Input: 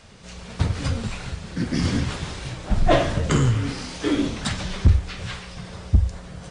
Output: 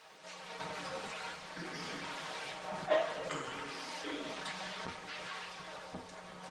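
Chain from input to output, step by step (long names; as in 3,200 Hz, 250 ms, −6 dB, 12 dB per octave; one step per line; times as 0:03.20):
high-pass filter 610 Hz 12 dB per octave
comb filter 6.4 ms, depth 46%
in parallel at +1 dB: compressor whose output falls as the input rises −38 dBFS, ratio −1
on the sum: single-tap delay 171 ms −15 dB
flanger 0.55 Hz, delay 2.2 ms, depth 3.4 ms, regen +61%
background noise violet −64 dBFS
high-shelf EQ 6,900 Hz −9.5 dB
on a send at −6 dB: convolution reverb RT60 0.55 s, pre-delay 3 ms
on the sum: level −8 dB
Opus 20 kbit/s 48,000 Hz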